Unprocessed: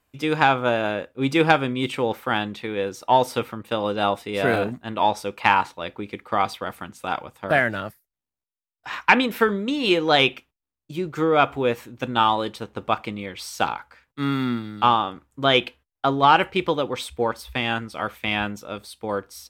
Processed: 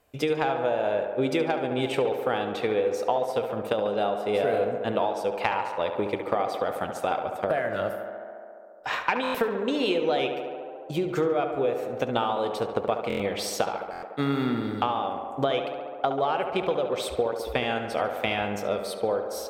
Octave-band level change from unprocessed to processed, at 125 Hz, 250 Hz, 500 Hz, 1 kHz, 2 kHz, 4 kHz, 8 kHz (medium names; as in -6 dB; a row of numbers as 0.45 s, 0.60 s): -5.5 dB, -4.5 dB, -0.5 dB, -6.5 dB, -9.0 dB, -8.5 dB, -0.5 dB